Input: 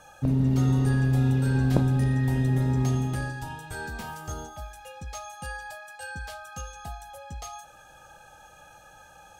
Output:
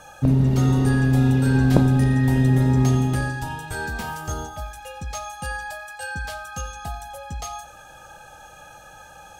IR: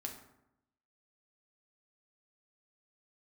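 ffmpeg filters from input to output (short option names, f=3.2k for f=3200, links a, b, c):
-filter_complex "[0:a]asplit=2[a][b];[1:a]atrim=start_sample=2205,adelay=89[c];[b][c]afir=irnorm=-1:irlink=0,volume=-15dB[d];[a][d]amix=inputs=2:normalize=0,volume=6.5dB"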